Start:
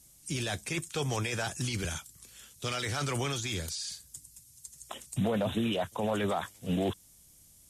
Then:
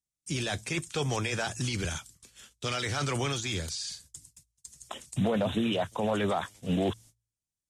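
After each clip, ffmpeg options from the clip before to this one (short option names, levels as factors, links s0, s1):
-af "agate=range=0.02:threshold=0.00251:ratio=16:detection=peak,lowpass=8600,bandreject=f=56.44:t=h:w=4,bandreject=f=112.88:t=h:w=4,volume=1.26"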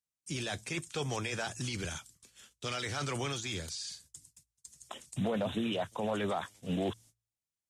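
-af "lowshelf=f=65:g=-8,volume=0.596"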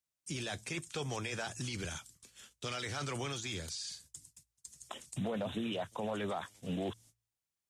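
-af "acompressor=threshold=0.00708:ratio=1.5,volume=1.12"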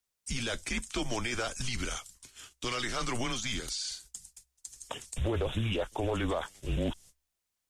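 -af "afreqshift=-120,volume=2"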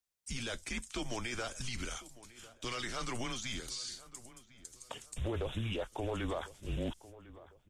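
-filter_complex "[0:a]asplit=2[s0][s1];[s1]adelay=1051,lowpass=f=2100:p=1,volume=0.133,asplit=2[s2][s3];[s3]adelay=1051,lowpass=f=2100:p=1,volume=0.38,asplit=2[s4][s5];[s5]adelay=1051,lowpass=f=2100:p=1,volume=0.38[s6];[s0][s2][s4][s6]amix=inputs=4:normalize=0,volume=0.531"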